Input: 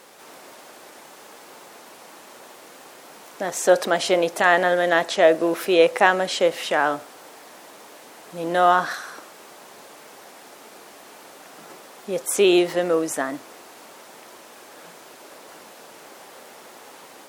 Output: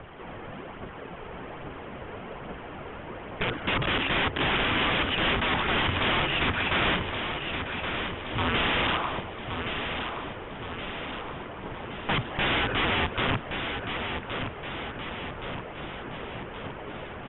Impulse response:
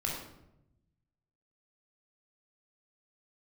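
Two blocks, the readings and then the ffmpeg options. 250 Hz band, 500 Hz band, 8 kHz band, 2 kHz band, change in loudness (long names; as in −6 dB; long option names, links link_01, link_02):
−5.0 dB, −12.5 dB, below −40 dB, −1.5 dB, −8.0 dB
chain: -filter_complex "[0:a]highpass=180,asplit=2[link_01][link_02];[link_02]highpass=frequency=720:poles=1,volume=19dB,asoftclip=type=tanh:threshold=-2dB[link_03];[link_01][link_03]amix=inputs=2:normalize=0,lowpass=frequency=1600:poles=1,volume=-6dB,aphaser=in_gain=1:out_gain=1:delay=2.5:decay=0.38:speed=1.2:type=triangular,aresample=8000,aeval=exprs='(mod(6.31*val(0)+1,2)-1)/6.31':channel_layout=same,aresample=44100,afreqshift=-410,asplit=2[link_04][link_05];[link_05]aecho=0:1:1121|2242|3363|4484|5605|6726|7847:0.447|0.25|0.14|0.0784|0.0439|0.0246|0.0138[link_06];[link_04][link_06]amix=inputs=2:normalize=0,volume=-4.5dB"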